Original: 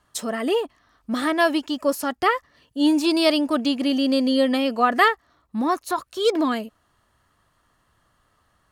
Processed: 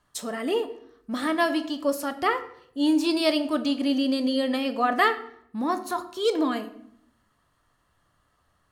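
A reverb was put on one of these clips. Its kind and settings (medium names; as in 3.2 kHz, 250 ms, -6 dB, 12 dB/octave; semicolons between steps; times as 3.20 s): simulated room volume 130 m³, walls mixed, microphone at 0.34 m; trim -4.5 dB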